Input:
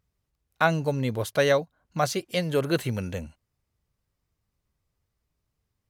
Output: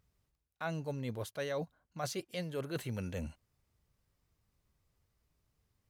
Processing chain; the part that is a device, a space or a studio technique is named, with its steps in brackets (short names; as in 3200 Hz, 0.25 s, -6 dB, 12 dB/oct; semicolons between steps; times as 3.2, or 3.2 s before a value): compression on the reversed sound (reverse; compressor 5:1, threshold -38 dBFS, peak gain reduction 20 dB; reverse); gain +1 dB